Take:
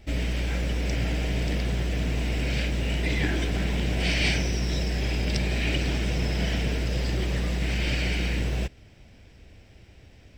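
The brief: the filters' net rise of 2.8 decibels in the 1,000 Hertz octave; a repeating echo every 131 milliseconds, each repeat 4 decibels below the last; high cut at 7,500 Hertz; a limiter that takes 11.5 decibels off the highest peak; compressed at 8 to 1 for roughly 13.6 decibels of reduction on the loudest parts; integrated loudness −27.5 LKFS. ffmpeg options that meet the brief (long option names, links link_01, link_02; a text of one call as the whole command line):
ffmpeg -i in.wav -af "lowpass=7500,equalizer=frequency=1000:width_type=o:gain=4,acompressor=threshold=-36dB:ratio=8,alimiter=level_in=13.5dB:limit=-24dB:level=0:latency=1,volume=-13.5dB,aecho=1:1:131|262|393|524|655|786|917|1048|1179:0.631|0.398|0.25|0.158|0.0994|0.0626|0.0394|0.0249|0.0157,volume=17.5dB" out.wav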